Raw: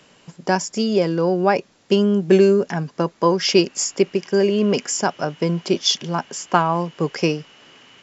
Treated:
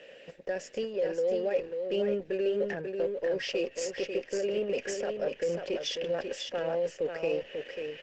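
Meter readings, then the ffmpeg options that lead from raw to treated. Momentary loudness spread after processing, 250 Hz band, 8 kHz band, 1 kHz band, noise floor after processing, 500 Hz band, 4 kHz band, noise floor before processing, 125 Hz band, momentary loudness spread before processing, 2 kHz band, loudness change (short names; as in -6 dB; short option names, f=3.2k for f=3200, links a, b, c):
6 LU, -18.5 dB, n/a, -22.0 dB, -53 dBFS, -9.5 dB, -14.5 dB, -56 dBFS, -22.5 dB, 8 LU, -11.5 dB, -12.5 dB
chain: -filter_complex "[0:a]asplit=3[a][b][c];[a]bandpass=f=530:t=q:w=8,volume=0dB[d];[b]bandpass=f=1.84k:t=q:w=8,volume=-6dB[e];[c]bandpass=f=2.48k:t=q:w=8,volume=-9dB[f];[d][e][f]amix=inputs=3:normalize=0,areverse,acompressor=threshold=-35dB:ratio=16,areverse,alimiter=level_in=12.5dB:limit=-24dB:level=0:latency=1:release=199,volume=-12.5dB,acontrast=27,aeval=exprs='0.0282*(cos(1*acos(clip(val(0)/0.0282,-1,1)))-cos(1*PI/2))+0.000631*(cos(8*acos(clip(val(0)/0.0282,-1,1)))-cos(8*PI/2))':c=same,asplit=2[g][h];[h]aecho=0:1:542:0.531[i];[g][i]amix=inputs=2:normalize=0,volume=8.5dB" -ar 48000 -c:a libopus -b:a 12k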